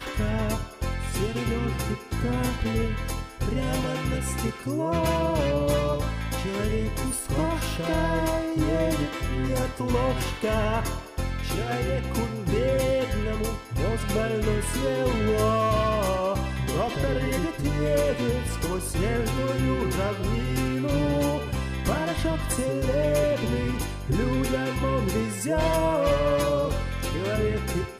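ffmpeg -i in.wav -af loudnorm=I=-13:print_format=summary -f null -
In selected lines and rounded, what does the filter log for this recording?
Input Integrated:    -26.3 LUFS
Input True Peak:      -9.9 dBTP
Input LRA:             2.5 LU
Input Threshold:     -36.3 LUFS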